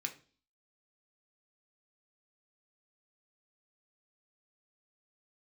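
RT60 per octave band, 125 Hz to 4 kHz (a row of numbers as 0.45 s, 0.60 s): 0.50 s, 0.55 s, 0.45 s, 0.35 s, 0.35 s, 0.45 s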